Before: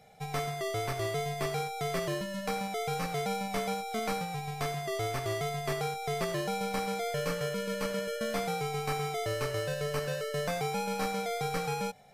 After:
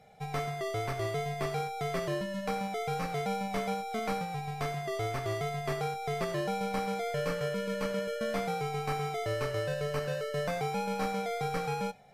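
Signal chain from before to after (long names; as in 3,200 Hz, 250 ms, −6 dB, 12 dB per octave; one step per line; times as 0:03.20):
high-shelf EQ 4,200 Hz −7.5 dB
convolution reverb RT60 0.20 s, pre-delay 5 ms, DRR 15.5 dB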